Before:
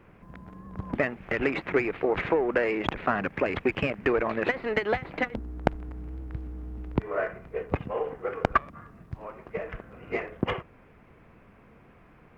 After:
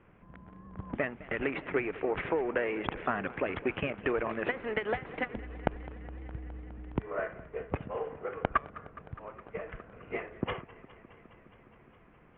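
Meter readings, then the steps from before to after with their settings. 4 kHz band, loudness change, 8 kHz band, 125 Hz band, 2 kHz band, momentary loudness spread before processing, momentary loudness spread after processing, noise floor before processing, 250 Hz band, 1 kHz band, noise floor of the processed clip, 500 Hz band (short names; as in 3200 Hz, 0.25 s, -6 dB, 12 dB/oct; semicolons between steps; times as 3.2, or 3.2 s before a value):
-5.5 dB, -5.5 dB, n/a, -6.0 dB, -5.5 dB, 15 LU, 15 LU, -56 dBFS, -6.0 dB, -5.0 dB, -59 dBFS, -5.5 dB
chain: elliptic low-pass 3300 Hz, stop band 50 dB; warbling echo 0.207 s, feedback 80%, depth 102 cents, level -19 dB; gain -5 dB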